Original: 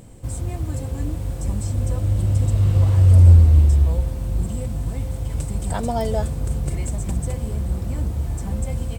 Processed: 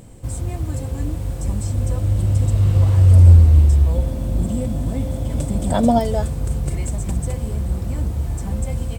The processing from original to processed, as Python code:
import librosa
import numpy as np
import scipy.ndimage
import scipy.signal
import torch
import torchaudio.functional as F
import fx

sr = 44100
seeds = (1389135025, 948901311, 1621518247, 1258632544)

y = fx.small_body(x, sr, hz=(250.0, 580.0, 3400.0), ring_ms=25, db=fx.line((3.94, 8.0), (5.98, 12.0)), at=(3.94, 5.98), fade=0.02)
y = y * 10.0 ** (1.5 / 20.0)